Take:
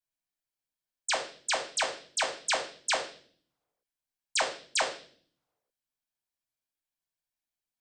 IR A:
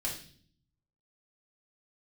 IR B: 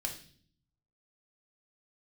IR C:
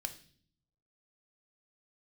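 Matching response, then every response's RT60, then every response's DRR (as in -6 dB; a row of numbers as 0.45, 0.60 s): B; 0.50, 0.50, 0.50 s; -4.0, 1.0, 7.0 dB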